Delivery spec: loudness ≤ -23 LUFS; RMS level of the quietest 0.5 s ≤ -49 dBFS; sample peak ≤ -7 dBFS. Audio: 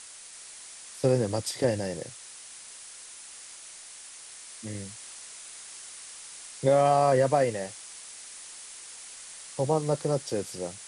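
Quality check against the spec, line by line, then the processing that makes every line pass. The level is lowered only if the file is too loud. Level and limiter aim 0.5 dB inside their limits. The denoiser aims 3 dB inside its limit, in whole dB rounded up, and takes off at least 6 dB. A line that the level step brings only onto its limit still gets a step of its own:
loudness -27.0 LUFS: pass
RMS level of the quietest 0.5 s -46 dBFS: fail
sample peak -9.5 dBFS: pass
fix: noise reduction 6 dB, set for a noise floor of -46 dBFS

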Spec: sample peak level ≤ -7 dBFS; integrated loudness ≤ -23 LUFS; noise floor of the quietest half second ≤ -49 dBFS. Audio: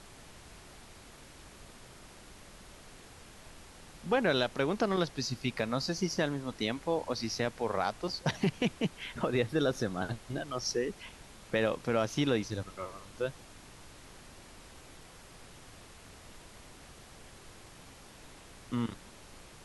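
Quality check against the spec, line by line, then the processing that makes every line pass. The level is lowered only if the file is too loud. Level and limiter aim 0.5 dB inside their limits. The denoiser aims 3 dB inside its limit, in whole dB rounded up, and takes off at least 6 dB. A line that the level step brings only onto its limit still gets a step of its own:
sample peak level -16.0 dBFS: pass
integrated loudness -33.0 LUFS: pass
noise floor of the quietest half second -53 dBFS: pass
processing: none needed

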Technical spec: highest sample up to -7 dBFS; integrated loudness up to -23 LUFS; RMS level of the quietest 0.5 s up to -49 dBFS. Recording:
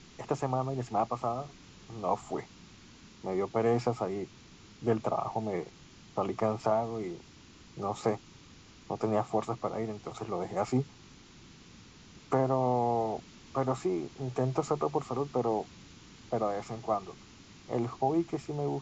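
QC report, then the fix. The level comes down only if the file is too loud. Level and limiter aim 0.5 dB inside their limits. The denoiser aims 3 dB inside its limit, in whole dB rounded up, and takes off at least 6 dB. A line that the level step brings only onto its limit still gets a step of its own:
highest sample -15.0 dBFS: pass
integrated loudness -33.0 LUFS: pass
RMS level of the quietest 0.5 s -54 dBFS: pass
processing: none needed

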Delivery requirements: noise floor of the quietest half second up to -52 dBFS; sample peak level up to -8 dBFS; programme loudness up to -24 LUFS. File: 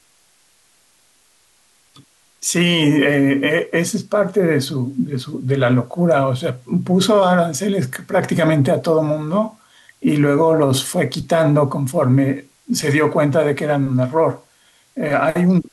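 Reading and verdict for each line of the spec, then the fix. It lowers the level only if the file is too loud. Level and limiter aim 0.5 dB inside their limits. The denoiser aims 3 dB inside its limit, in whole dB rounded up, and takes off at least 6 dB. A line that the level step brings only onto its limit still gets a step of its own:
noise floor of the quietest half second -57 dBFS: pass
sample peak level -6.0 dBFS: fail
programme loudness -17.5 LUFS: fail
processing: trim -7 dB

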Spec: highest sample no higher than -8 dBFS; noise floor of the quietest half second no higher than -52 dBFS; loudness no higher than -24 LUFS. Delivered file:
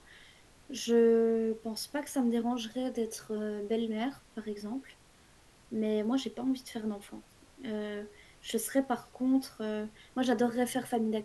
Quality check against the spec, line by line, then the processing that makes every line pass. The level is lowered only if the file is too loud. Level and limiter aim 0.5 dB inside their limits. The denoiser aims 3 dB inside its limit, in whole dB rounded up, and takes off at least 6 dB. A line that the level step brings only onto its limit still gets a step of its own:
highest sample -15.0 dBFS: pass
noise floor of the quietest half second -60 dBFS: pass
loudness -32.5 LUFS: pass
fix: none needed

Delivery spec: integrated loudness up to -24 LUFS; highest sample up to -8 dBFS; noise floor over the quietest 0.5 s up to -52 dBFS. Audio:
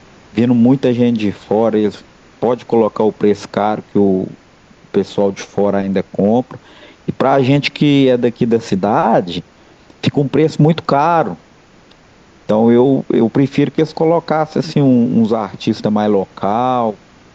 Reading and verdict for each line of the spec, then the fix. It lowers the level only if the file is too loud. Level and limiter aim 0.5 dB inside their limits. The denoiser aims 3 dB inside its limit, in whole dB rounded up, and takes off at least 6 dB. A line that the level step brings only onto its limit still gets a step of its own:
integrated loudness -14.5 LUFS: fail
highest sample -2.0 dBFS: fail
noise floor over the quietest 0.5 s -46 dBFS: fail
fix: trim -10 dB

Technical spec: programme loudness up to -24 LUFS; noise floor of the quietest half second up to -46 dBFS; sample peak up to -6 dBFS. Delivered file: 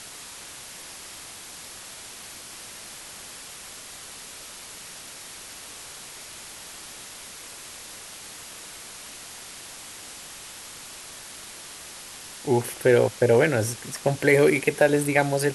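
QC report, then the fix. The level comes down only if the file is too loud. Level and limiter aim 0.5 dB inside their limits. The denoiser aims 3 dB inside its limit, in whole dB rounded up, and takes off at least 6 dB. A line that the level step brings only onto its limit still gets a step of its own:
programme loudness -21.5 LUFS: fail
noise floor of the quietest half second -42 dBFS: fail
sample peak -5.5 dBFS: fail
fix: noise reduction 6 dB, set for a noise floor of -42 dBFS; trim -3 dB

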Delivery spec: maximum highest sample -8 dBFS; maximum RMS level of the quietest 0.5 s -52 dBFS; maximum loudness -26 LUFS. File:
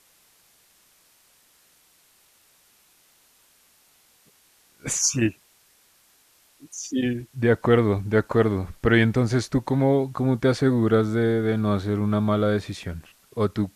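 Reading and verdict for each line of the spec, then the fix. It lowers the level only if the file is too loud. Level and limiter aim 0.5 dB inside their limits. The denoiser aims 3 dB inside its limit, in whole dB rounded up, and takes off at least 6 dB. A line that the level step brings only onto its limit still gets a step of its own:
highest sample -5.0 dBFS: fail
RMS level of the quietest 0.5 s -60 dBFS: pass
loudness -22.5 LUFS: fail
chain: trim -4 dB

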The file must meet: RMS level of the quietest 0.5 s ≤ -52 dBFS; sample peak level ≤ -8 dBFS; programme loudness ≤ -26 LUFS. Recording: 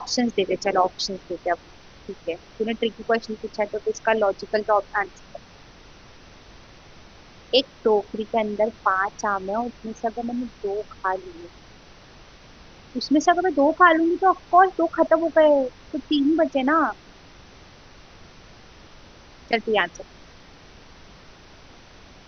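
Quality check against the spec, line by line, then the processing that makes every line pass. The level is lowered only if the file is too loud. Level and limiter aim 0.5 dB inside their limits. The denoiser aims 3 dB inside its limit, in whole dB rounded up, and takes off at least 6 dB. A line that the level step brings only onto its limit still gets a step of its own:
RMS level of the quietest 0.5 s -47 dBFS: fail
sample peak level -3.5 dBFS: fail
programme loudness -22.5 LUFS: fail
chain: noise reduction 6 dB, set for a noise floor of -47 dBFS; trim -4 dB; peak limiter -8.5 dBFS

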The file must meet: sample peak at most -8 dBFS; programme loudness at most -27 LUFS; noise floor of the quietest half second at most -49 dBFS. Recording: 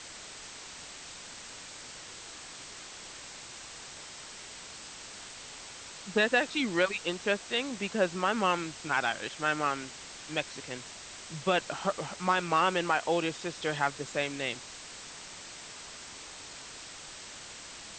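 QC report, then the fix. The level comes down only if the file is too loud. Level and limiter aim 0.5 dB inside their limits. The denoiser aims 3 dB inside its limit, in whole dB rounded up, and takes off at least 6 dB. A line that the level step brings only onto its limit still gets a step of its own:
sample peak -13.0 dBFS: pass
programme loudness -33.5 LUFS: pass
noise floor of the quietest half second -46 dBFS: fail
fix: noise reduction 6 dB, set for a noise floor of -46 dBFS

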